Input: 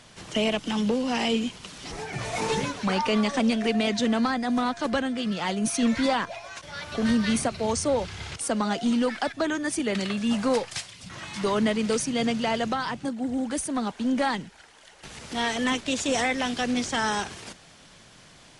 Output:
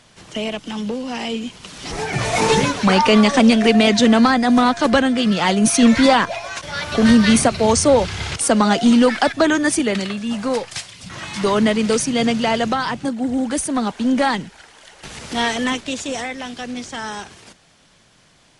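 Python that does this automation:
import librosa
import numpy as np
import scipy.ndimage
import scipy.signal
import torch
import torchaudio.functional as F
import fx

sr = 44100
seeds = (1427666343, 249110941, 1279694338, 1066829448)

y = fx.gain(x, sr, db=fx.line((1.4, 0.0), (2.04, 11.0), (9.68, 11.0), (10.25, 1.0), (11.21, 7.5), (15.41, 7.5), (16.31, -2.5)))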